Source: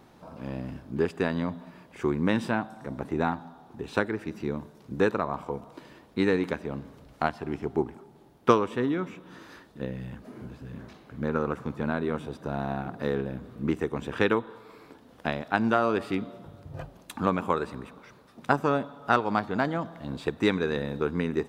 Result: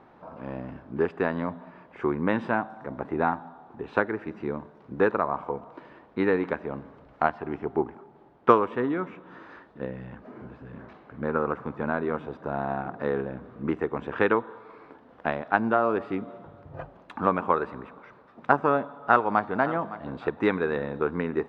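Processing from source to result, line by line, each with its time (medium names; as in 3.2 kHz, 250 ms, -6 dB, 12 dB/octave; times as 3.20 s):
15.57–16.28 s: peaking EQ 2.3 kHz -4 dB 2.9 oct
18.91–19.57 s: echo throw 560 ms, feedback 30%, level -15 dB
whole clip: low-pass 1.6 kHz 12 dB/octave; bass shelf 350 Hz -11 dB; trim +6 dB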